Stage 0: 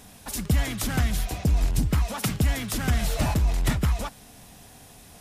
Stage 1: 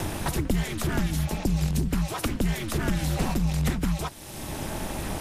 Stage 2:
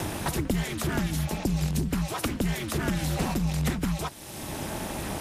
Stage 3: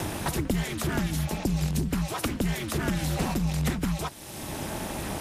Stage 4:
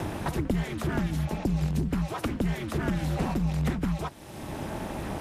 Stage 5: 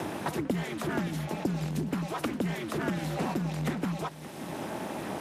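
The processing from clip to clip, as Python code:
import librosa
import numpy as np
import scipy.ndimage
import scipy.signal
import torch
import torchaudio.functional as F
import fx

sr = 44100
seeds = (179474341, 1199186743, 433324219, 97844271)

y1 = x * np.sin(2.0 * np.pi * 110.0 * np.arange(len(x)) / sr)
y1 = fx.band_squash(y1, sr, depth_pct=100)
y2 = fx.highpass(y1, sr, hz=78.0, slope=6)
y3 = y2
y4 = fx.high_shelf(y3, sr, hz=3200.0, db=-12.0)
y5 = scipy.signal.sosfilt(scipy.signal.butter(2, 190.0, 'highpass', fs=sr, output='sos'), y4)
y5 = y5 + 10.0 ** (-14.5 / 20.0) * np.pad(y5, (int(573 * sr / 1000.0), 0))[:len(y5)]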